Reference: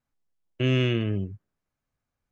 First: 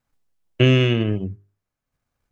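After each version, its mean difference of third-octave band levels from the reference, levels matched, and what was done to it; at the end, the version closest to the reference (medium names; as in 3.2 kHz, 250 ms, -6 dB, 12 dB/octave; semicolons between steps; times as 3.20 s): 1.5 dB: hum notches 50/100/150/200/250/300/350/400 Hz; transient shaper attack +6 dB, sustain -6 dB; trim +6.5 dB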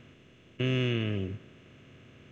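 4.5 dB: spectral levelling over time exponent 0.4; trim -6.5 dB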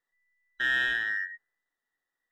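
13.5 dB: every band turned upside down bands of 2 kHz; in parallel at -11.5 dB: hard clipper -25.5 dBFS, distortion -7 dB; on the sum: trim -5.5 dB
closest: first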